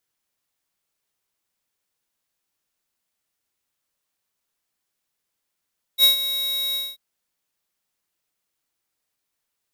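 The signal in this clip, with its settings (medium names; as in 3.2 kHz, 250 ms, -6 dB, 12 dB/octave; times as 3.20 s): ADSR square 3.81 kHz, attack 58 ms, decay 119 ms, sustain -12.5 dB, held 0.77 s, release 217 ms -12.5 dBFS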